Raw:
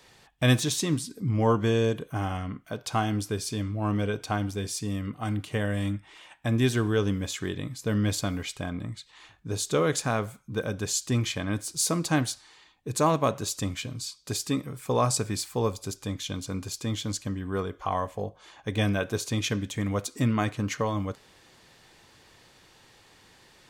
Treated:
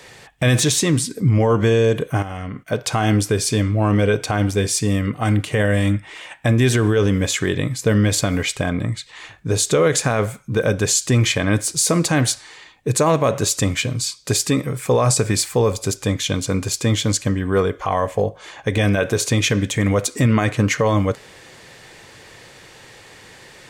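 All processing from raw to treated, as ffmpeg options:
ffmpeg -i in.wav -filter_complex "[0:a]asettb=1/sr,asplit=3[link_01][link_02][link_03];[link_01]atrim=end=2.224[link_04];[link_02]atrim=start=2.22:end=2.72,asetpts=PTS-STARTPTS,afade=type=in:duration=0.004:curve=qsin,afade=type=out:start_time=0.496:duration=0.004:curve=qsin,agate=range=-10dB:threshold=-56dB:ratio=16:release=100:detection=peak,acompressor=threshold=-36dB:ratio=16:attack=3.2:release=140:knee=1:detection=peak[link_05];[link_03]atrim=start=2.716[link_06];[link_04][link_05]acrossfade=duration=0.004:curve1=hsin:curve2=qsin[link_07];[link_07][link_06]acrossfade=duration=0.004:curve1=qsin:curve2=hsin,equalizer=frequency=125:width_type=o:width=1:gain=5,equalizer=frequency=500:width_type=o:width=1:gain=7,equalizer=frequency=2000:width_type=o:width=1:gain=7,equalizer=frequency=8000:width_type=o:width=1:gain=5,alimiter=limit=-16.5dB:level=0:latency=1:release=52,volume=8.5dB" out.wav

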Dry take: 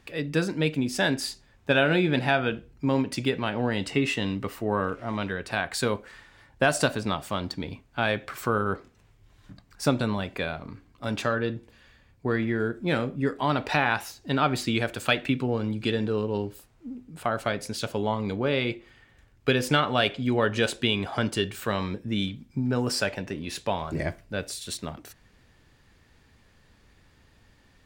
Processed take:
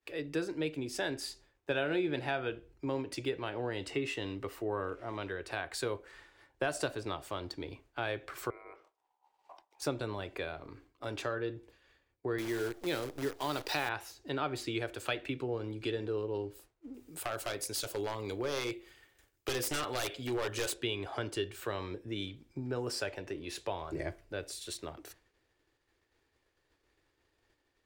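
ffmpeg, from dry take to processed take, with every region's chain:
ffmpeg -i in.wav -filter_complex "[0:a]asettb=1/sr,asplit=3[link_01][link_02][link_03];[link_01]atrim=end=8.504[link_04];[link_02]atrim=start=8.5:end=9.82,asetpts=PTS-STARTPTS,afade=type=in:duration=0.004:curve=qsin,afade=type=out:start_time=1.316:duration=0.004:curve=qsin,acompressor=threshold=-43dB:ratio=3:attack=3.2:release=140:knee=1:detection=peak,aeval=exprs='val(0)*sin(2*PI*870*n/s)':channel_layout=same[link_05];[link_03]atrim=start=9.816[link_06];[link_04][link_05]acrossfade=duration=0.004:curve1=hsin:curve2=qsin[link_07];[link_07][link_06]acrossfade=duration=0.004:curve1=qsin:curve2=hsin,asettb=1/sr,asplit=3[link_08][link_09][link_10];[link_08]atrim=end=12.384[link_11];[link_09]atrim=start=12.38:end=13.89,asetpts=PTS-STARTPTS,afade=type=in:duration=0.004:curve=qsin,afade=type=out:start_time=1.506:duration=0.004:curve=qsin,highpass=100,equalizer=frequency=4900:width=1.5:gain=14,acrusher=bits=6:dc=4:mix=0:aa=0.000001[link_12];[link_10]atrim=start=13.886[link_13];[link_11][link_12]acrossfade=duration=0.004:curve1=hsin:curve2=qsin[link_14];[link_14][link_13]acrossfade=duration=0.004:curve1=qsin:curve2=hsin,asettb=1/sr,asplit=3[link_15][link_16][link_17];[link_15]atrim=end=16.944[link_18];[link_16]atrim=start=16.94:end=20.74,asetpts=PTS-STARTPTS,afade=type=in:duration=0.004:curve=qsin,afade=type=out:start_time=3.796:duration=0.004:curve=qsin,aemphasis=mode=production:type=75kf,aeval=exprs='0.119*(abs(mod(val(0)/0.119+3,4)-2)-1)':channel_layout=same[link_19];[link_17]atrim=start=20.736[link_20];[link_18][link_19]acrossfade=duration=0.004:curve1=hsin:curve2=qsin[link_21];[link_21][link_20]acrossfade=duration=0.004:curve1=qsin:curve2=hsin,agate=range=-33dB:threshold=-48dB:ratio=3:detection=peak,lowshelf=frequency=270:width_type=q:width=3:gain=-7,acrossover=split=130[link_22][link_23];[link_23]acompressor=threshold=-52dB:ratio=1.5[link_24];[link_22][link_24]amix=inputs=2:normalize=0" out.wav

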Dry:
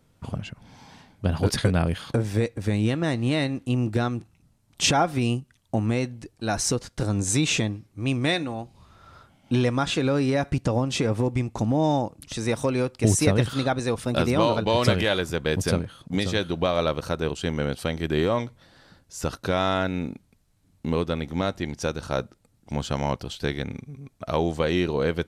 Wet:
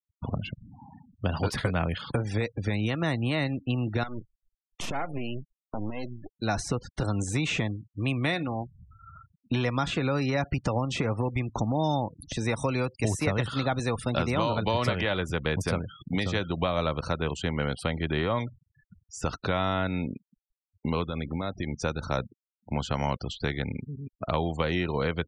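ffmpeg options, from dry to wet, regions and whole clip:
ffmpeg -i in.wav -filter_complex "[0:a]asettb=1/sr,asplit=3[link_01][link_02][link_03];[link_01]atrim=end=4.034[link_04];[link_02]atrim=start=4.03:end=6.31,asetpts=PTS-STARTPTS,afade=type=in:duration=0.004:curve=qsin,afade=type=out:start_time=2.276:duration=0.004:curve=qsin,acompressor=threshold=-26dB:ratio=4:attack=3.2:release=140:knee=1:detection=peak,acrusher=bits=8:dc=4:mix=0:aa=0.000001,aeval=exprs='max(val(0),0)':channel_layout=same[link_05];[link_03]atrim=start=6.306[link_06];[link_04][link_05]acrossfade=duration=0.004:curve1=hsin:curve2=qsin[link_07];[link_07][link_06]acrossfade=duration=0.004:curve1=qsin:curve2=hsin,asettb=1/sr,asplit=3[link_08][link_09][link_10];[link_08]atrim=end=21.084[link_11];[link_09]atrim=start=21.08:end=21.74,asetpts=PTS-STARTPTS,afade=type=in:duration=0.004:curve=qsin,afade=type=out:start_time=0.656:duration=0.004:curve=qsin,lowpass=9300,acompressor=threshold=-26dB:ratio=10:attack=3.2:release=140:knee=1:detection=peak[link_12];[link_10]atrim=start=21.736[link_13];[link_11][link_12]acrossfade=duration=0.004:curve1=hsin:curve2=qsin[link_14];[link_14][link_13]acrossfade=duration=0.004:curve1=qsin:curve2=hsin,afftfilt=real='re*gte(hypot(re,im),0.0112)':imag='im*gte(hypot(re,im),0.0112)':win_size=1024:overlap=0.75,bandreject=frequency=1600:width=15,acrossover=split=220|680|2500[link_15][link_16][link_17][link_18];[link_15]acompressor=threshold=-31dB:ratio=4[link_19];[link_16]acompressor=threshold=-38dB:ratio=4[link_20];[link_17]acompressor=threshold=-30dB:ratio=4[link_21];[link_18]acompressor=threshold=-43dB:ratio=4[link_22];[link_19][link_20][link_21][link_22]amix=inputs=4:normalize=0,volume=2.5dB" out.wav

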